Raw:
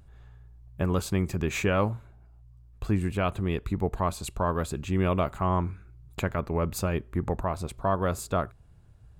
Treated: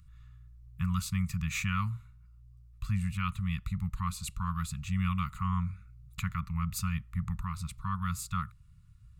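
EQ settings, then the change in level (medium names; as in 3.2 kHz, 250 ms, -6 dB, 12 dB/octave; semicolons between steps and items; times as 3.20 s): elliptic band-stop 180–1200 Hz, stop band 40 dB; band-stop 1.6 kHz, Q 5.5; band-stop 3.2 kHz, Q 21; -1.5 dB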